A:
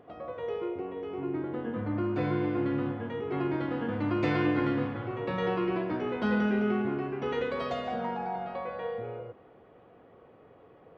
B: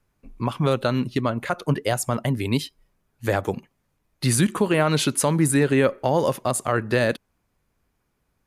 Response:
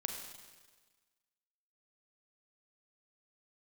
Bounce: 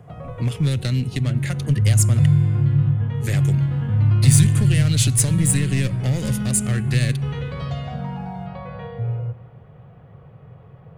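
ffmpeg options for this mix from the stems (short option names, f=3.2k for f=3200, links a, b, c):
-filter_complex "[0:a]lowshelf=f=200:t=q:w=3:g=12.5,volume=2.5dB,asplit=2[a][b];[b]volume=-9.5dB[c];[1:a]aeval=exprs='clip(val(0),-1,0.0668)':c=same,equalizer=f=125:t=o:w=1:g=9,equalizer=f=250:t=o:w=1:g=4,equalizer=f=500:t=o:w=1:g=3,equalizer=f=1k:t=o:w=1:g=-10,equalizer=f=2k:t=o:w=1:g=11,equalizer=f=8k:t=o:w=1:g=10,volume=-1dB,asplit=3[d][e][f];[d]atrim=end=2.26,asetpts=PTS-STARTPTS,afade=t=out:st=2.256:d=0.004:c=hsin[g];[e]atrim=start=2.26:end=3.14,asetpts=PTS-STARTPTS,volume=0[h];[f]atrim=start=3.14,asetpts=PTS-STARTPTS,afade=t=in:d=0.004:c=hsin[i];[g][h][i]concat=n=3:v=0:a=1,asplit=2[j][k];[k]volume=-20dB[l];[2:a]atrim=start_sample=2205[m];[c][l]amix=inputs=2:normalize=0[n];[n][m]afir=irnorm=-1:irlink=0[o];[a][j][o]amix=inputs=3:normalize=0,acrossover=split=160|3000[p][q][r];[q]acompressor=threshold=-34dB:ratio=3[s];[p][s][r]amix=inputs=3:normalize=0"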